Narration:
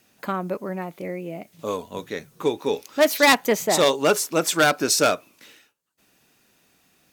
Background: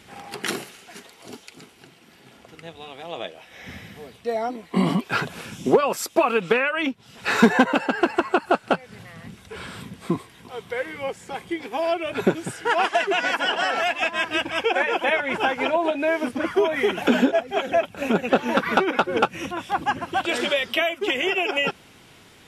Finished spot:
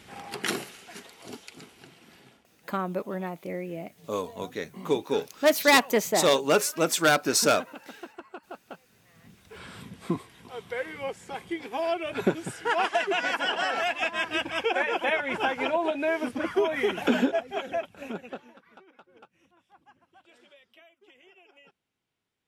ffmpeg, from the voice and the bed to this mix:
-filter_complex "[0:a]adelay=2450,volume=-3dB[a];[1:a]volume=16dB,afade=t=out:st=2.16:d=0.31:silence=0.0944061,afade=t=in:st=9.02:d=0.99:silence=0.125893,afade=t=out:st=17.11:d=1.43:silence=0.0334965[b];[a][b]amix=inputs=2:normalize=0"

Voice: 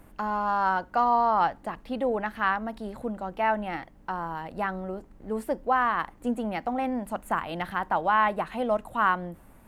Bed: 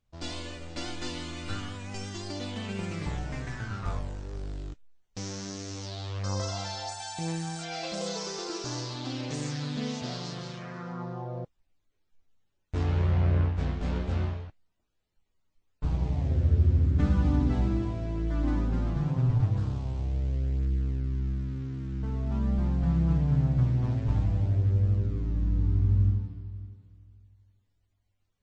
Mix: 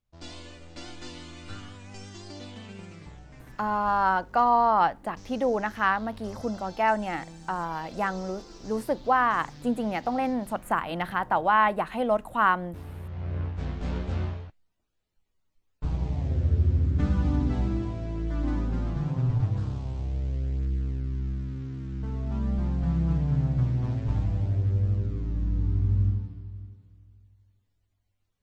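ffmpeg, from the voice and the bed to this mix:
-filter_complex "[0:a]adelay=3400,volume=1.5dB[a];[1:a]volume=7.5dB,afade=t=out:st=2.41:d=0.74:silence=0.398107,afade=t=in:st=13.1:d=0.77:silence=0.223872[b];[a][b]amix=inputs=2:normalize=0"

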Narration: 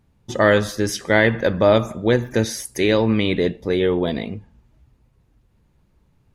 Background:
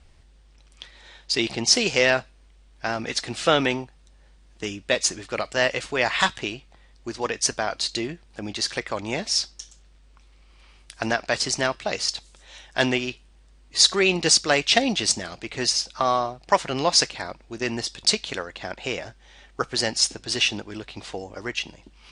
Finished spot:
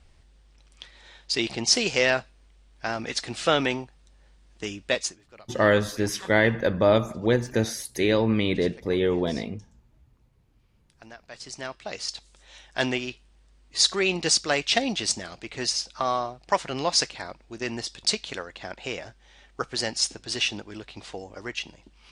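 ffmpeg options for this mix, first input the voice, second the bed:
-filter_complex "[0:a]adelay=5200,volume=-4.5dB[a];[1:a]volume=15.5dB,afade=t=out:st=4.94:d=0.24:silence=0.105925,afade=t=in:st=11.27:d=1.14:silence=0.125893[b];[a][b]amix=inputs=2:normalize=0"

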